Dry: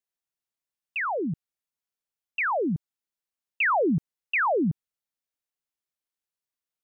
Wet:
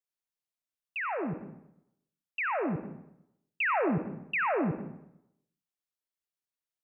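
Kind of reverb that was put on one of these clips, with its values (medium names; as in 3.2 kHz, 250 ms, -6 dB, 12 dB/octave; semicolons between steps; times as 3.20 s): algorithmic reverb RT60 0.82 s, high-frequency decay 0.75×, pre-delay 35 ms, DRR 6.5 dB; trim -5.5 dB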